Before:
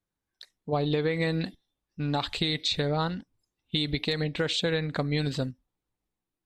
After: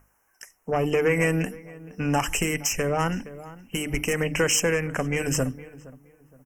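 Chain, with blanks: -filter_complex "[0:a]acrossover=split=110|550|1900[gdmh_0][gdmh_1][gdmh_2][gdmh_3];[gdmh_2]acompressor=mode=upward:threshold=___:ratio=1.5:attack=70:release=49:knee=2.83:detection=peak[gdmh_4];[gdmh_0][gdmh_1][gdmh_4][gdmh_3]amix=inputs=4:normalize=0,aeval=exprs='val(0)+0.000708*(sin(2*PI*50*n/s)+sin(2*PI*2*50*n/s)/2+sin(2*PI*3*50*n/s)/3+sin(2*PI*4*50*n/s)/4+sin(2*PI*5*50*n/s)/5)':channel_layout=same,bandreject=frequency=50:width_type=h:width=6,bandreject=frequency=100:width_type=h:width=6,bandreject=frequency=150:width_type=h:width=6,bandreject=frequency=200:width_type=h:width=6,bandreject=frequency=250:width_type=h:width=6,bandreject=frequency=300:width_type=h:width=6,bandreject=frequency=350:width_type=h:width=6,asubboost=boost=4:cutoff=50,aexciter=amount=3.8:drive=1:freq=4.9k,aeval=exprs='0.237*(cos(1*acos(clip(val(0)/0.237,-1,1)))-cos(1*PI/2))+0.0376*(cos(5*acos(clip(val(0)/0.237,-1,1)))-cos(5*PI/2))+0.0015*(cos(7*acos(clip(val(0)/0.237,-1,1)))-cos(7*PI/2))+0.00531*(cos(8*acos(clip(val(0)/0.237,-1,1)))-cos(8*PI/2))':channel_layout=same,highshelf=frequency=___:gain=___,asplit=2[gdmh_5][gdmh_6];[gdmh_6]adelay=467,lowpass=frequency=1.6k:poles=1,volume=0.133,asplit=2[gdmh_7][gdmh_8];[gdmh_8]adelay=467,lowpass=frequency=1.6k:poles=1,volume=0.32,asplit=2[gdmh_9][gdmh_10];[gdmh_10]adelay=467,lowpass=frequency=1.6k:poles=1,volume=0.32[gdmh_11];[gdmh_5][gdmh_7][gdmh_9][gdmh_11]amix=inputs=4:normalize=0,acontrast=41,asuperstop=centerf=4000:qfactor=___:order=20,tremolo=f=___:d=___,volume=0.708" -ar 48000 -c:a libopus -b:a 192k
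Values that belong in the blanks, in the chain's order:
0.00398, 2.9k, 7, 1.9, 0.91, 0.29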